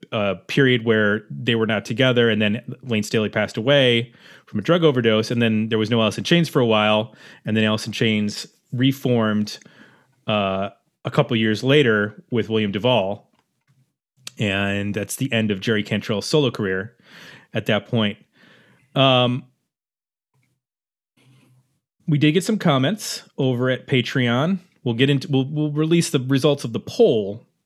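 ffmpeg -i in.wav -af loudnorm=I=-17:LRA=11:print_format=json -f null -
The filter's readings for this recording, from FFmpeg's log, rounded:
"input_i" : "-20.2",
"input_tp" : "-1.6",
"input_lra" : "4.5",
"input_thresh" : "-30.9",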